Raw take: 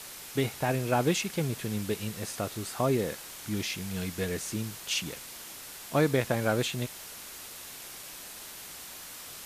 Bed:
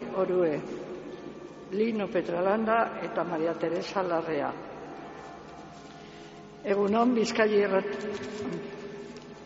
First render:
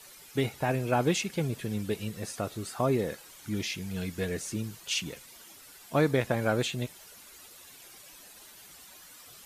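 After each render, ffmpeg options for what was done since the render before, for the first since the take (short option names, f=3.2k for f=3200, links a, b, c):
-af "afftdn=nr=11:nf=-45"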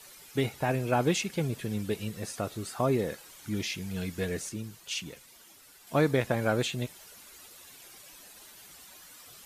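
-filter_complex "[0:a]asplit=3[a][b][c];[a]atrim=end=4.492[d];[b]atrim=start=4.488:end=5.872,asetpts=PTS-STARTPTS,volume=-4dB[e];[c]atrim=start=5.868[f];[d][e]acrossfade=d=0.004:c1=hsin:c2=hsin[g];[g][f]acrossfade=d=0.004:c1=hsin:c2=hsin"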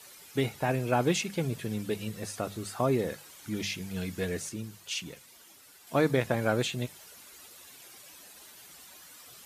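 -af "highpass=53,bandreject=f=50:t=h:w=6,bandreject=f=100:t=h:w=6,bandreject=f=150:t=h:w=6,bandreject=f=200:t=h:w=6"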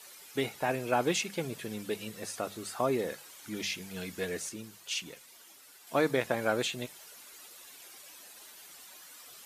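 -af "equalizer=f=92:w=0.57:g=-12"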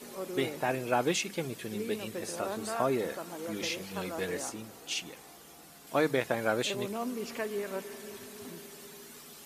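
-filter_complex "[1:a]volume=-11.5dB[a];[0:a][a]amix=inputs=2:normalize=0"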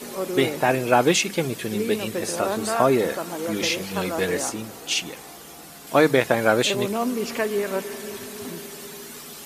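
-af "volume=10.5dB"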